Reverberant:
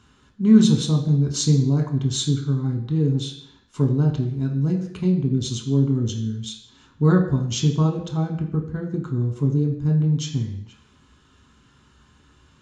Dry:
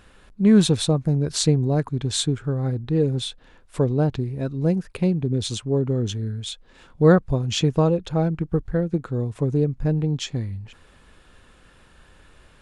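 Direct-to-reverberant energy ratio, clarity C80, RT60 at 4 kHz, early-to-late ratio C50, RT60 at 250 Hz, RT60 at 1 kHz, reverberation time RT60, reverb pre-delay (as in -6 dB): 1.5 dB, 11.0 dB, 0.70 s, 8.0 dB, 0.70 s, 0.70 s, 0.70 s, 3 ms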